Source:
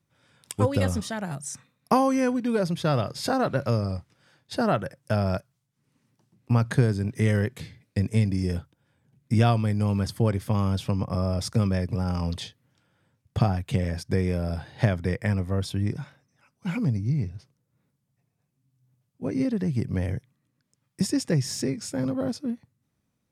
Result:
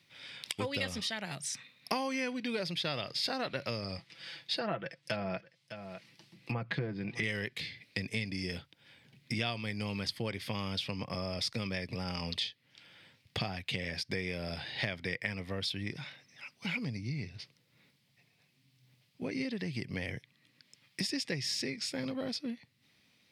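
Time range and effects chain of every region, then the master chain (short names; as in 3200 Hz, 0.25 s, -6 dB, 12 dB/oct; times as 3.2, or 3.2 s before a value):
3.98–7.23 treble ducked by the level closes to 1200 Hz, closed at -18 dBFS + comb 6 ms, depth 56% + echo 0.606 s -22.5 dB
whole clip: HPF 230 Hz 6 dB/oct; band shelf 3100 Hz +14 dB; compressor 2.5:1, threshold -47 dBFS; gain +6 dB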